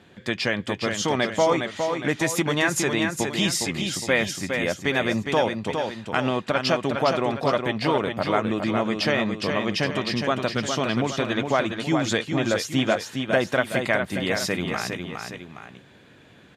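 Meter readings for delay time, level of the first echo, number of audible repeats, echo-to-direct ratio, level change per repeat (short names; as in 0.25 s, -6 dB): 0.411 s, -5.5 dB, 2, -4.5 dB, -6.5 dB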